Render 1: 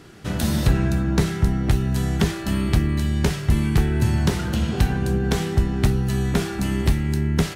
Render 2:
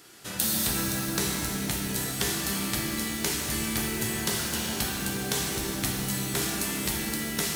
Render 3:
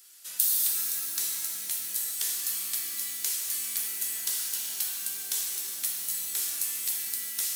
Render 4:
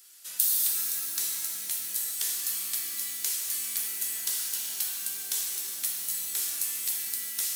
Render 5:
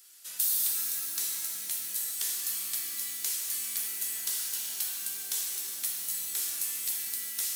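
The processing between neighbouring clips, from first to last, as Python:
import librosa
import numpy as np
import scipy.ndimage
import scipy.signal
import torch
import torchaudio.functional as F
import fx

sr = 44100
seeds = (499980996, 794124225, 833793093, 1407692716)

y1 = fx.riaa(x, sr, side='recording')
y1 = fx.rev_shimmer(y1, sr, seeds[0], rt60_s=3.1, semitones=7, shimmer_db=-8, drr_db=-1.0)
y1 = y1 * librosa.db_to_amplitude(-7.5)
y2 = np.diff(y1, prepend=0.0)
y3 = y2
y4 = 10.0 ** (-15.0 / 20.0) * np.tanh(y3 / 10.0 ** (-15.0 / 20.0))
y4 = y4 * librosa.db_to_amplitude(-1.5)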